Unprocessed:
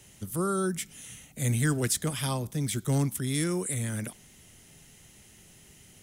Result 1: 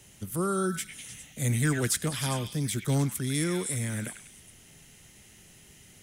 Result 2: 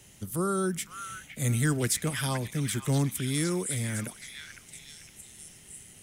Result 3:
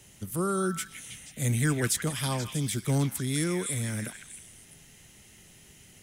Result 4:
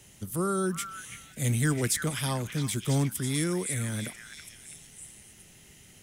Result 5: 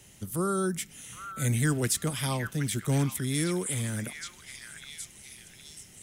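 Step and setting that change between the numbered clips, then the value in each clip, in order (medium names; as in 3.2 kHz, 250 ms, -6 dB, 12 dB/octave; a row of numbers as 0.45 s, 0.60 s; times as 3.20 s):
repeats whose band climbs or falls, time: 101 ms, 511 ms, 160 ms, 331 ms, 771 ms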